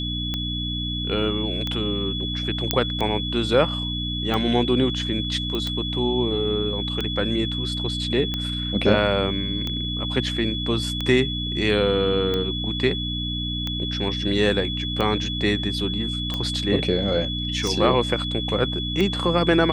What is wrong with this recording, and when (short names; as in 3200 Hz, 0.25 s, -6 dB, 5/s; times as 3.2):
hum 60 Hz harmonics 5 -29 dBFS
tick 45 rpm -13 dBFS
tone 3400 Hz -28 dBFS
2.71 pop -2 dBFS
5.55 pop -15 dBFS